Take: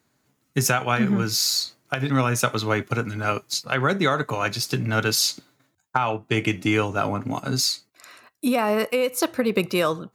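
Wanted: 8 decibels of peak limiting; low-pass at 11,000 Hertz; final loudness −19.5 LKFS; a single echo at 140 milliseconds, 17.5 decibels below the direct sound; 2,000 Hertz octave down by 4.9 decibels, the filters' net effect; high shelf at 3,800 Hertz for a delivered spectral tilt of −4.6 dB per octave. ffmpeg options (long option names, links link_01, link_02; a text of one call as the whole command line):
ffmpeg -i in.wav -af "lowpass=11000,equalizer=frequency=2000:width_type=o:gain=-6,highshelf=frequency=3800:gain=-4.5,alimiter=limit=-16dB:level=0:latency=1,aecho=1:1:140:0.133,volume=7.5dB" out.wav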